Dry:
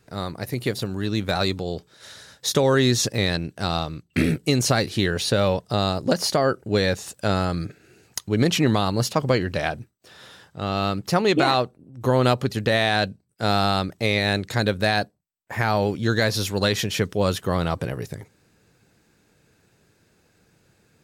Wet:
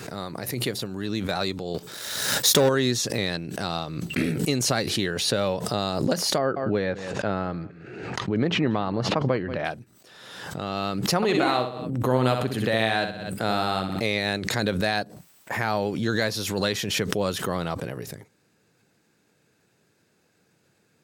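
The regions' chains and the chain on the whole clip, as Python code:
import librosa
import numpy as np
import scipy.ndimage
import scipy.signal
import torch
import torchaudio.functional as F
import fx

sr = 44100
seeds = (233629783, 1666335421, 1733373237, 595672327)

y = fx.chain(x, sr, fx.leveller(passes=2),
    fx.high_shelf(hz=9900.0, db=11.0), at=(1.74, 2.69))
y = fx.chain(y, sr, fx.lowpass(hz=2100.0, slope=12),
    fx.echo_single(ms=183, db=-21.0), at=(6.38, 9.65))
y = fx.chain(y, sr, fx.peak_eq(hz=5600.0, db=-8.0, octaves=0.65),
    fx.echo_feedback(ms=63, feedback_pct=37, wet_db=-7), at=(11.16, 14.0))
y = scipy.signal.sosfilt(scipy.signal.butter(2, 130.0, 'highpass', fs=sr, output='sos'), y)
y = fx.pre_swell(y, sr, db_per_s=39.0)
y = F.gain(torch.from_numpy(y), -4.0).numpy()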